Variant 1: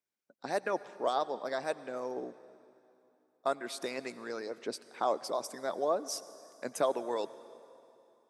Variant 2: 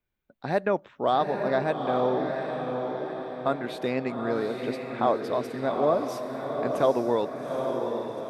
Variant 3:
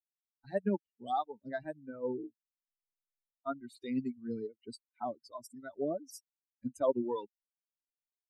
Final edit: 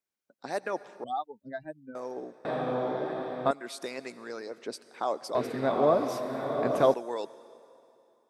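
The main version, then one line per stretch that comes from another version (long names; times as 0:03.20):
1
0:01.04–0:01.95: punch in from 3
0:02.45–0:03.51: punch in from 2
0:05.35–0:06.94: punch in from 2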